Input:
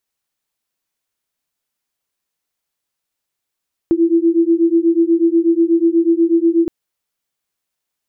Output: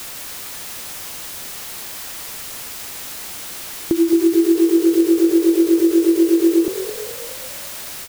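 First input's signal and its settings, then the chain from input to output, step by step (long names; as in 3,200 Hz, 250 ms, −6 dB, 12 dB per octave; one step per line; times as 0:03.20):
two tones that beat 330 Hz, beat 8.2 Hz, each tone −13.5 dBFS 2.77 s
background noise white −32 dBFS
echo with shifted repeats 213 ms, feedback 55%, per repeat +45 Hz, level −13.5 dB
every ending faded ahead of time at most 170 dB per second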